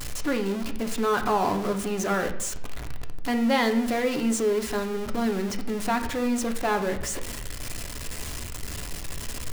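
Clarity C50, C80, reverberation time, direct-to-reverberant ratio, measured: 10.5 dB, 13.5 dB, 0.75 s, 5.0 dB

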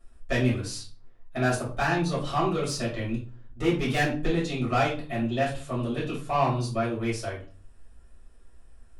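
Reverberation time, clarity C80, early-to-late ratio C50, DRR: 0.40 s, 13.0 dB, 7.0 dB, −8.5 dB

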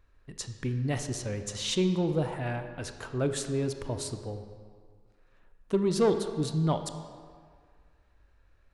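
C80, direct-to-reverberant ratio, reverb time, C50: 9.5 dB, 7.5 dB, 1.9 s, 8.0 dB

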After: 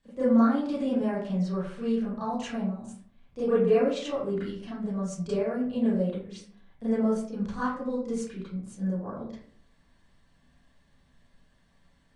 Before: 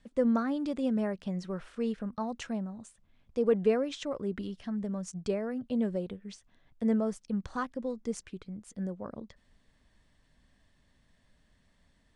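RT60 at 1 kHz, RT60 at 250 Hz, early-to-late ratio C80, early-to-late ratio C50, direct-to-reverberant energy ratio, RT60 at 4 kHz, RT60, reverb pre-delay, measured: 0.50 s, 0.70 s, 5.5 dB, 0.5 dB, −12.0 dB, 0.30 s, 0.55 s, 28 ms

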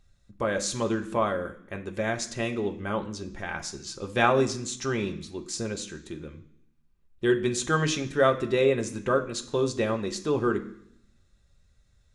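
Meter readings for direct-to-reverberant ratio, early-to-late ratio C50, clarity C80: 3.0 dB, 13.0 dB, 16.0 dB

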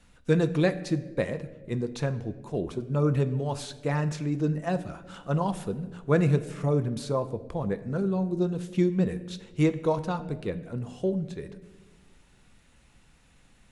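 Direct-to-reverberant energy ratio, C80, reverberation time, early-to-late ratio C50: 10.5 dB, 16.0 dB, 1.3 s, 14.5 dB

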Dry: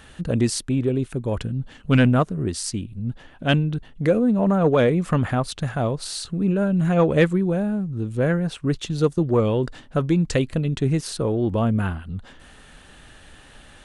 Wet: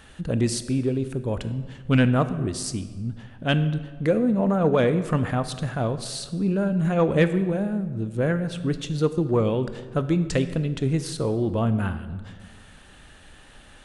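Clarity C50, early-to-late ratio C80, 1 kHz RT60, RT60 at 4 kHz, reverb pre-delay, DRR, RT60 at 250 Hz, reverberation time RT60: 12.5 dB, 14.0 dB, 1.4 s, 1.0 s, 19 ms, 11.0 dB, 1.8 s, 1.5 s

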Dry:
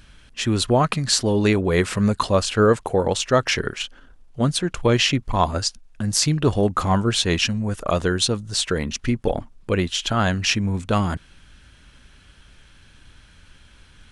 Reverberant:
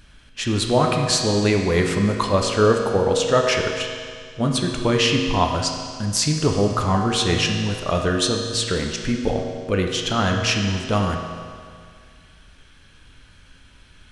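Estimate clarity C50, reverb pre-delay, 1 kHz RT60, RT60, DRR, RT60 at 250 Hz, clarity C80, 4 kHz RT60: 4.0 dB, 8 ms, 2.1 s, 2.1 s, 1.5 dB, 2.1 s, 5.0 dB, 2.1 s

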